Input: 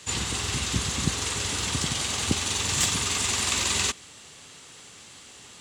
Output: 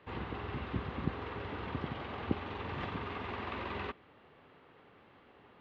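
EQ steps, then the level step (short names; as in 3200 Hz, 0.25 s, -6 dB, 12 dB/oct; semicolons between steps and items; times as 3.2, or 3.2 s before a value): air absorption 360 m; tone controls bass -9 dB, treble -2 dB; tape spacing loss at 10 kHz 42 dB; 0.0 dB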